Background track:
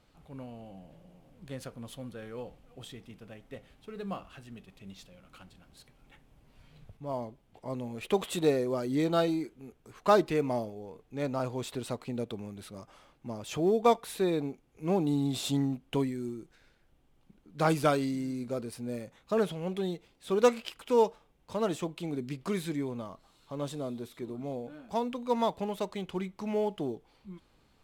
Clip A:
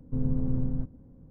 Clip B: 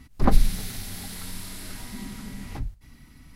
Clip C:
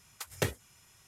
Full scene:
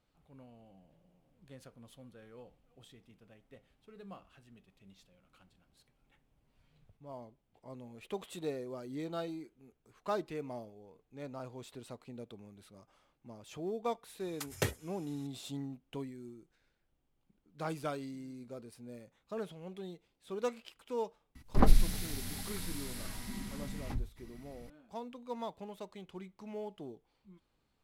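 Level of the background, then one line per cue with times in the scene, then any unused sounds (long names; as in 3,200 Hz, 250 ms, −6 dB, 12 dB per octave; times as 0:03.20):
background track −12 dB
0:14.20: mix in C −1 dB + soft clipping −17 dBFS
0:21.35: mix in B −5 dB
not used: A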